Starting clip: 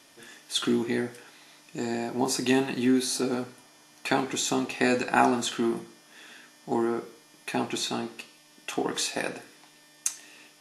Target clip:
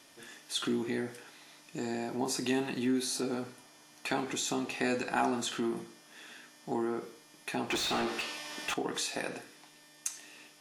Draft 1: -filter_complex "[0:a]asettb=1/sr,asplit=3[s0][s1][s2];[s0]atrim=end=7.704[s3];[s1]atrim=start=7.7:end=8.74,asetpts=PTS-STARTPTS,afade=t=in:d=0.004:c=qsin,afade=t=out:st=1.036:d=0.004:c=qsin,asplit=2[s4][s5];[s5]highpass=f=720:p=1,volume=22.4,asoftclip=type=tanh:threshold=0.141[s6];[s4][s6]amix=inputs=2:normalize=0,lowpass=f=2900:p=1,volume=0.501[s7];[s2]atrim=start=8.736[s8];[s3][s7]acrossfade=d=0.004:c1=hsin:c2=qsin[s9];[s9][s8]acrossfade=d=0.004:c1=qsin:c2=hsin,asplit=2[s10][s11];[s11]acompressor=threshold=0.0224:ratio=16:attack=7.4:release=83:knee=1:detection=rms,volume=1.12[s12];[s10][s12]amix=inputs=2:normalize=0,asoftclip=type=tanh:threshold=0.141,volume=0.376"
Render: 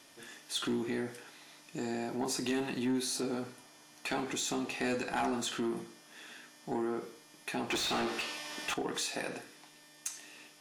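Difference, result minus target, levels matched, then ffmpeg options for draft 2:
saturation: distortion +12 dB
-filter_complex "[0:a]asettb=1/sr,asplit=3[s0][s1][s2];[s0]atrim=end=7.704[s3];[s1]atrim=start=7.7:end=8.74,asetpts=PTS-STARTPTS,afade=t=in:d=0.004:c=qsin,afade=t=out:st=1.036:d=0.004:c=qsin,asplit=2[s4][s5];[s5]highpass=f=720:p=1,volume=22.4,asoftclip=type=tanh:threshold=0.141[s6];[s4][s6]amix=inputs=2:normalize=0,lowpass=f=2900:p=1,volume=0.501[s7];[s2]atrim=start=8.736[s8];[s3][s7]acrossfade=d=0.004:c1=hsin:c2=qsin[s9];[s9][s8]acrossfade=d=0.004:c1=qsin:c2=hsin,asplit=2[s10][s11];[s11]acompressor=threshold=0.0224:ratio=16:attack=7.4:release=83:knee=1:detection=rms,volume=1.12[s12];[s10][s12]amix=inputs=2:normalize=0,asoftclip=type=tanh:threshold=0.447,volume=0.376"

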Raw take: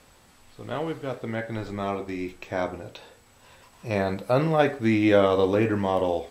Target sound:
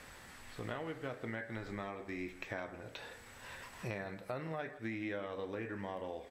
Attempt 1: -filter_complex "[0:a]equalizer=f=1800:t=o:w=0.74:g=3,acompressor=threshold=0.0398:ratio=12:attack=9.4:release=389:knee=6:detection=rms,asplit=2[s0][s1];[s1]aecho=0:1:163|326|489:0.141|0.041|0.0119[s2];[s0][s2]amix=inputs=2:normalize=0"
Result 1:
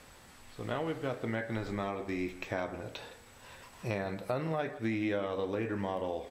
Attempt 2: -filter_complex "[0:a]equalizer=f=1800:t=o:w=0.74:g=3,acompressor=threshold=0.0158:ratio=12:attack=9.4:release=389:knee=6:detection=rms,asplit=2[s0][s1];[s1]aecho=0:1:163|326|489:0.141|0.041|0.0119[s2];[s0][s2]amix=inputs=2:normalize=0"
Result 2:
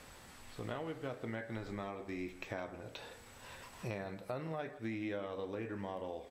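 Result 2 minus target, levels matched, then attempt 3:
2 kHz band -3.5 dB
-filter_complex "[0:a]equalizer=f=1800:t=o:w=0.74:g=9,acompressor=threshold=0.0158:ratio=12:attack=9.4:release=389:knee=6:detection=rms,asplit=2[s0][s1];[s1]aecho=0:1:163|326|489:0.141|0.041|0.0119[s2];[s0][s2]amix=inputs=2:normalize=0"

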